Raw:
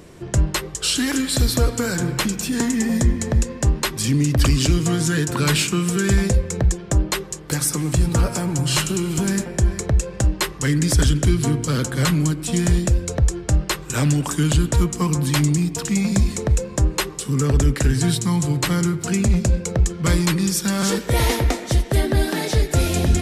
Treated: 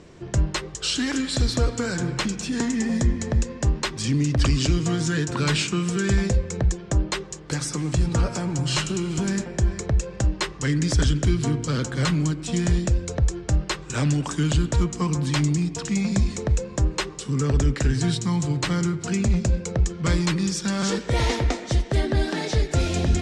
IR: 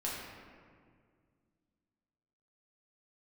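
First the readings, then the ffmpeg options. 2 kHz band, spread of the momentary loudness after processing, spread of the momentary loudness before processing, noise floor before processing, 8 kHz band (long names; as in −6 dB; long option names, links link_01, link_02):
−3.5 dB, 4 LU, 4 LU, −35 dBFS, −6.5 dB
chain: -af "lowpass=frequency=7300:width=0.5412,lowpass=frequency=7300:width=1.3066,volume=-3.5dB"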